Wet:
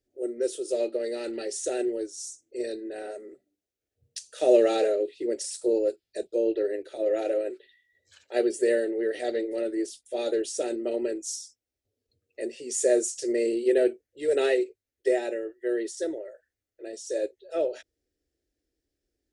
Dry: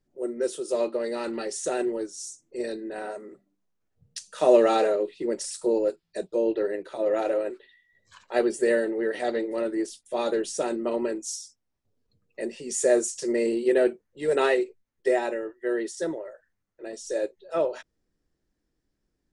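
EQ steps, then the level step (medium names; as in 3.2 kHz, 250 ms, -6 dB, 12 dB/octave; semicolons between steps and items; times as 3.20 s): high-pass 47 Hz; static phaser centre 430 Hz, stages 4; 0.0 dB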